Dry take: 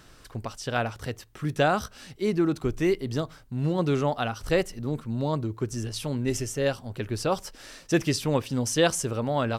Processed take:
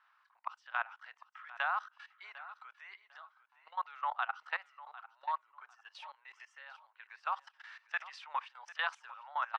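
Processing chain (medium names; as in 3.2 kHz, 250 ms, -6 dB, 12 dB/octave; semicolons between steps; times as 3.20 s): steep high-pass 920 Hz 48 dB/octave; spectral noise reduction 7 dB; low-pass 2.4 kHz 12 dB/octave; tilt EQ -4.5 dB/octave; level held to a coarse grid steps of 19 dB; feedback delay 750 ms, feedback 23%, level -17 dB; trim +5.5 dB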